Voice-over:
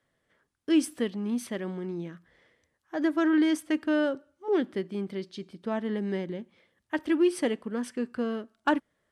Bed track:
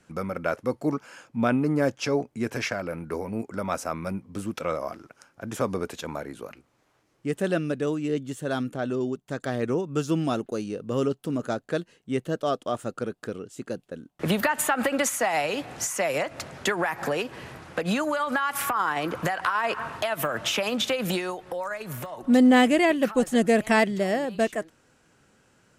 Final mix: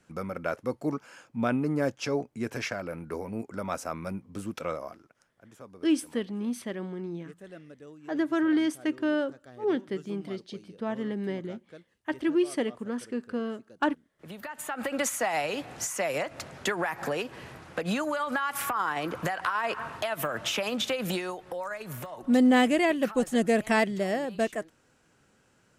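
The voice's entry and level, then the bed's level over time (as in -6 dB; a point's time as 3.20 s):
5.15 s, -1.5 dB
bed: 4.68 s -4 dB
5.55 s -21 dB
14.23 s -21 dB
15.03 s -3.5 dB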